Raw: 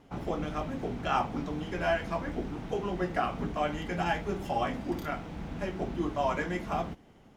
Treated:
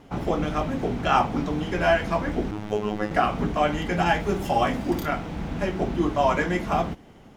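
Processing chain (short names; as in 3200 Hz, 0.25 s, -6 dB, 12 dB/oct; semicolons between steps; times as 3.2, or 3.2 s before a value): 2.51–3.11 robotiser 105 Hz; 4.2–5.04 high shelf 7700 Hz +6 dB; gain +8 dB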